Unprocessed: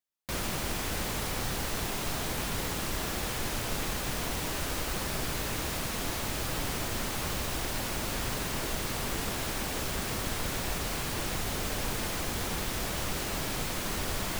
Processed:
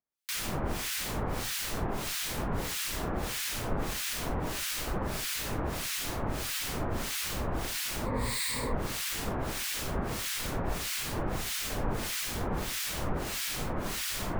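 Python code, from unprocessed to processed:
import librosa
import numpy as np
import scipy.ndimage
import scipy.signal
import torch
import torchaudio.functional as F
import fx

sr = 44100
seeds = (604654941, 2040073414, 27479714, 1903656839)

y = fx.ripple_eq(x, sr, per_octave=0.97, db=12, at=(8.06, 8.74))
y = fx.harmonic_tremolo(y, sr, hz=1.6, depth_pct=100, crossover_hz=1500.0)
y = F.gain(torch.from_numpy(y), 4.0).numpy()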